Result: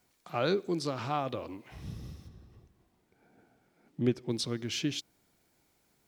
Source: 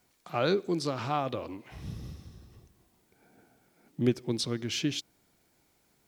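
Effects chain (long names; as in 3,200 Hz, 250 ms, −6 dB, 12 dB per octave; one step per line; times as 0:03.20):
0:02.27–0:04.28: high-shelf EQ 3,700 Hz → 7,000 Hz −10.5 dB
level −2 dB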